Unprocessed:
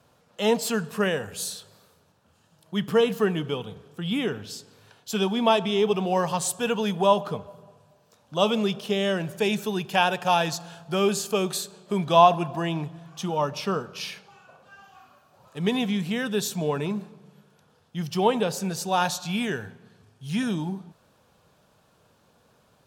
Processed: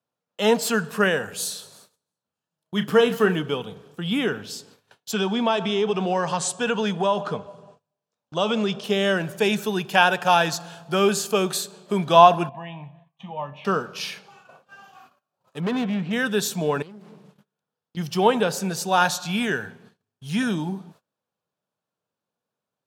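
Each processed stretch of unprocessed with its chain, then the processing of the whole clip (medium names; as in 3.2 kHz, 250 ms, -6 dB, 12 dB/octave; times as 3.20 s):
1.36–3.36 s: doubling 33 ms -11 dB + feedback delay 171 ms, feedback 54%, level -19 dB
5.12–8.84 s: low-pass 8.5 kHz 24 dB/octave + compression 2.5:1, threshold -22 dBFS
12.49–13.65 s: distance through air 240 m + static phaser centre 1.4 kHz, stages 6 + feedback comb 69 Hz, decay 0.28 s, mix 70%
15.60–16.13 s: low-pass 2.3 kHz + hard clipper -24 dBFS
16.82–17.97 s: bass shelf 76 Hz -3 dB + compression 16:1, threshold -41 dBFS + loudspeaker Doppler distortion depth 0.51 ms
whole clip: high-pass 140 Hz; gate -53 dBFS, range -27 dB; dynamic bell 1.5 kHz, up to +6 dB, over -46 dBFS, Q 3; trim +3 dB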